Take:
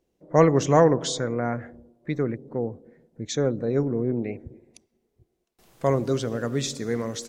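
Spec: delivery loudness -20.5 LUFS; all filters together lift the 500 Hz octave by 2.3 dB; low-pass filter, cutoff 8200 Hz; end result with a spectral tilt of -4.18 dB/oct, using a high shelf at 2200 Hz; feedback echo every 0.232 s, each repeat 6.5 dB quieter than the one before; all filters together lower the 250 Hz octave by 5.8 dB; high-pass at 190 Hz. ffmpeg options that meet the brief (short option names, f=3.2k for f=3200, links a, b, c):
-af "highpass=190,lowpass=8.2k,equalizer=f=250:t=o:g=-8,equalizer=f=500:t=o:g=4.5,highshelf=f=2.2k:g=4,aecho=1:1:232|464|696|928|1160|1392:0.473|0.222|0.105|0.0491|0.0231|0.0109,volume=2.5dB"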